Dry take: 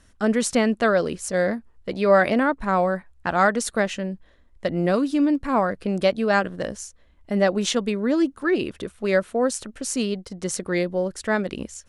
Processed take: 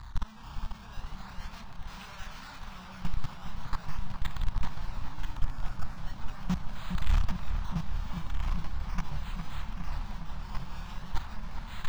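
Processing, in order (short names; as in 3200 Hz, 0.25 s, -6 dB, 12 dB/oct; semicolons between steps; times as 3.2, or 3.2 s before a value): infinite clipping; de-hum 177.4 Hz, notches 38; decimation with a swept rate 15×, swing 100% 0.4 Hz; 5.34–5.98 fixed phaser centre 630 Hz, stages 8; de-esser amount 50%; chorus voices 6, 1.3 Hz, delay 30 ms, depth 3.4 ms; 1.52–2.65 low shelf 500 Hz -11.5 dB; level quantiser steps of 22 dB; EQ curve 140 Hz 0 dB, 300 Hz -15 dB, 510 Hz -21 dB, 960 Hz +1 dB, 2000 Hz -3 dB, 3900 Hz +2 dB, 5800 Hz 0 dB, 9500 Hz -11 dB; echoes that change speed 0.464 s, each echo -2 st, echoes 3, each echo -6 dB; darkening echo 0.409 s, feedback 84%, low-pass 2200 Hz, level -7.5 dB; gain +1 dB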